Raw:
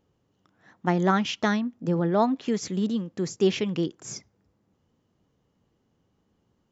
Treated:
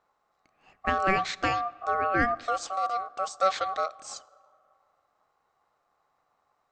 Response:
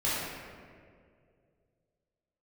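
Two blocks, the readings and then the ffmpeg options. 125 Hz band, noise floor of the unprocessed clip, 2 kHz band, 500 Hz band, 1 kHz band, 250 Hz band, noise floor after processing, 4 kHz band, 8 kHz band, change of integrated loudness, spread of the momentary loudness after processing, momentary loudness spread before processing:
-13.0 dB, -72 dBFS, +4.0 dB, -4.5 dB, +4.5 dB, -13.5 dB, -75 dBFS, -3.5 dB, n/a, -2.0 dB, 9 LU, 9 LU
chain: -filter_complex "[0:a]asplit=2[a][b];[1:a]atrim=start_sample=2205[c];[b][c]afir=irnorm=-1:irlink=0,volume=-31.5dB[d];[a][d]amix=inputs=2:normalize=0,aeval=exprs='val(0)*sin(2*PI*950*n/s)':c=same,bandreject=f=60:t=h:w=6,bandreject=f=120:t=h:w=6,bandreject=f=180:t=h:w=6,bandreject=f=240:t=h:w=6"

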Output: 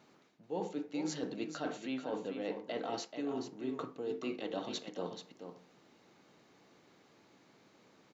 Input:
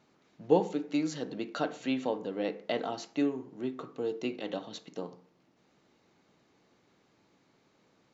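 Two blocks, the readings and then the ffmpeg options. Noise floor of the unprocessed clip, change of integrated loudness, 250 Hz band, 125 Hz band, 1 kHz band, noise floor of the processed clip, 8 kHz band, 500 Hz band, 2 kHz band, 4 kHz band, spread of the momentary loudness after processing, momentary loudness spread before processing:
-69 dBFS, -6.5 dB, -6.0 dB, -7.0 dB, -5.5 dB, -66 dBFS, n/a, -6.5 dB, -5.0 dB, -2.5 dB, 5 LU, 14 LU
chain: -af "highpass=f=130:p=1,areverse,acompressor=threshold=-38dB:ratio=16,areverse,aecho=1:1:433:0.376,volume=3.5dB"

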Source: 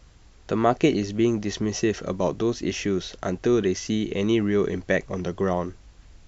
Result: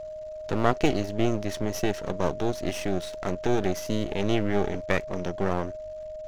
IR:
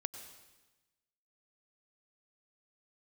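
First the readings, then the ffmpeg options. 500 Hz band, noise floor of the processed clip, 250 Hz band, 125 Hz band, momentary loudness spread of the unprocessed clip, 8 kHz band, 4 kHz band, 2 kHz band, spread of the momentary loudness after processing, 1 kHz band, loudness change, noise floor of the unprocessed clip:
-3.0 dB, -38 dBFS, -5.0 dB, -1.5 dB, 6 LU, n/a, -3.0 dB, -1.5 dB, 7 LU, -0.5 dB, -3.5 dB, -52 dBFS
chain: -af "aeval=exprs='max(val(0),0)':c=same,aeval=exprs='val(0)+0.0178*sin(2*PI*620*n/s)':c=same"

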